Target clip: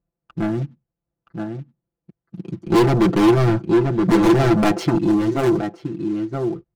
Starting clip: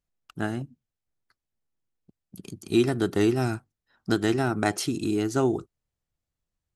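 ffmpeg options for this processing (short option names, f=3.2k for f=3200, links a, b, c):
-filter_complex "[0:a]highpass=47,tiltshelf=f=1.5k:g=7.5,acrusher=bits=5:mode=log:mix=0:aa=0.000001,aecho=1:1:972:0.398,adynamicsmooth=sensitivity=6.5:basefreq=2k,asettb=1/sr,asplit=3[a][b][c];[a]atrim=end=2.674[d];[b]atrim=start=2.67:end=4.98,asetpts=PTS-STARTPTS,afade=t=in:d=0.004:c=qsin,afade=t=out:st=2.306:d=0.004:c=qsin,aeval=exprs='0.422*sin(PI/2*1.58*val(0)/0.422)':c=same[e];[c]atrim=start=4.976[f];[d][e]acrossfade=d=0.004:c1=hsin:c2=qsin[g];[g][f]acrossfade=d=0.004:c1=qsin:c2=hsin,aeval=exprs='0.447*(cos(1*acos(clip(val(0)/0.447,-1,1)))-cos(1*PI/2))+0.0794*(cos(5*acos(clip(val(0)/0.447,-1,1)))-cos(5*PI/2))':c=same,aecho=1:1:5.9:0.86,volume=-4.5dB"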